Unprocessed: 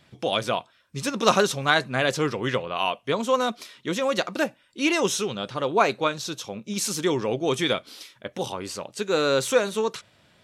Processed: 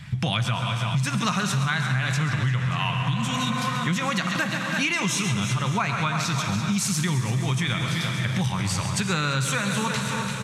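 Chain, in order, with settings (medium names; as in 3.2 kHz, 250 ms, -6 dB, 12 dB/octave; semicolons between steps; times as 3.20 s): resonant low shelf 280 Hz +13 dB, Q 1.5; de-hum 47.04 Hz, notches 3; on a send: multi-tap echo 110/135/340/583 ms -19/-12/-11.5/-19 dB; on the sum: plate-style reverb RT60 3.7 s, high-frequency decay 0.95×, DRR 8.5 dB; spectral replace 3.01–3.59 s, 360–2500 Hz; graphic EQ 125/250/500/1000/2000/8000 Hz +6/-10/-8/+4/+8/+5 dB; in parallel at +2.5 dB: peak limiter -16 dBFS, peak gain reduction 15 dB; on the sum: compression 6:1, threshold -22 dBFS, peak gain reduction 14 dB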